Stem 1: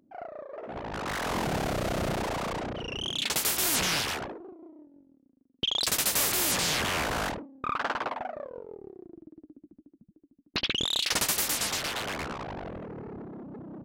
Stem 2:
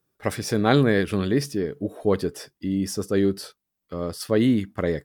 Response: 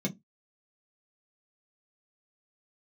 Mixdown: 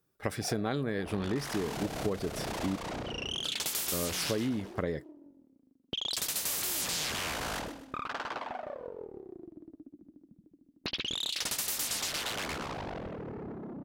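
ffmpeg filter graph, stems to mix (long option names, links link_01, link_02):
-filter_complex "[0:a]acompressor=threshold=-35dB:ratio=4,adynamicequalizer=threshold=0.00398:dfrequency=2700:dqfactor=0.7:tfrequency=2700:tqfactor=0.7:attack=5:release=100:ratio=0.375:range=2.5:mode=boostabove:tftype=highshelf,adelay=300,volume=-0.5dB,asplit=2[link_01][link_02];[link_02]volume=-11.5dB[link_03];[1:a]volume=-2dB,asplit=3[link_04][link_05][link_06];[link_04]atrim=end=2.76,asetpts=PTS-STARTPTS,afade=type=out:start_time=2.756:duration=0.004:curve=hsin[link_07];[link_05]atrim=start=2.76:end=3.44,asetpts=PTS-STARTPTS,volume=0[link_08];[link_06]atrim=start=3.44,asetpts=PTS-STARTPTS,afade=type=in:duration=0.004:curve=hsin[link_09];[link_07][link_08][link_09]concat=n=3:v=0:a=1[link_10];[link_03]aecho=0:1:127|254|381|508|635:1|0.34|0.116|0.0393|0.0134[link_11];[link_01][link_10][link_11]amix=inputs=3:normalize=0,acompressor=threshold=-28dB:ratio=12"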